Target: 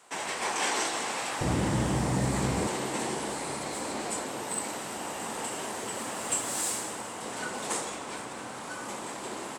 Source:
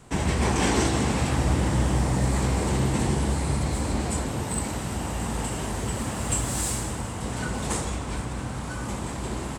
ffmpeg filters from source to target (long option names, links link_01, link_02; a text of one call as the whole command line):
ffmpeg -i in.wav -af "asetnsamples=nb_out_samples=441:pad=0,asendcmd='1.41 highpass f 120;2.67 highpass f 370',highpass=650,volume=-1.5dB" out.wav